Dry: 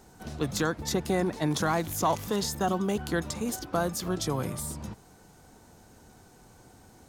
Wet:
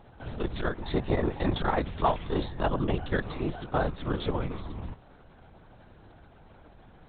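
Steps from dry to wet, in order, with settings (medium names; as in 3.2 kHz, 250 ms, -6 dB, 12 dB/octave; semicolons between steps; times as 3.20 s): LPC vocoder at 8 kHz whisper; transformer saturation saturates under 150 Hz; trim +2 dB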